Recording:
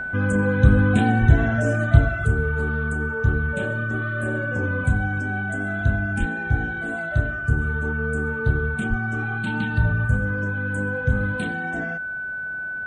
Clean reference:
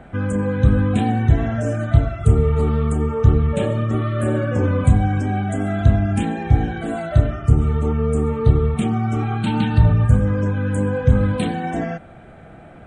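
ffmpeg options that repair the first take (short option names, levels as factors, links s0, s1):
-filter_complex "[0:a]bandreject=f=1500:w=30,asplit=3[s0][s1][s2];[s0]afade=t=out:st=1.2:d=0.02[s3];[s1]highpass=f=140:w=0.5412,highpass=f=140:w=1.3066,afade=t=in:st=1.2:d=0.02,afade=t=out:st=1.32:d=0.02[s4];[s2]afade=t=in:st=1.32:d=0.02[s5];[s3][s4][s5]amix=inputs=3:normalize=0,asplit=3[s6][s7][s8];[s6]afade=t=out:st=6.19:d=0.02[s9];[s7]highpass=f=140:w=0.5412,highpass=f=140:w=1.3066,afade=t=in:st=6.19:d=0.02,afade=t=out:st=6.31:d=0.02[s10];[s8]afade=t=in:st=6.31:d=0.02[s11];[s9][s10][s11]amix=inputs=3:normalize=0,asplit=3[s12][s13][s14];[s12]afade=t=out:st=8.89:d=0.02[s15];[s13]highpass=f=140:w=0.5412,highpass=f=140:w=1.3066,afade=t=in:st=8.89:d=0.02,afade=t=out:st=9.01:d=0.02[s16];[s14]afade=t=in:st=9.01:d=0.02[s17];[s15][s16][s17]amix=inputs=3:normalize=0,asetnsamples=n=441:p=0,asendcmd='2.26 volume volume 7dB',volume=1"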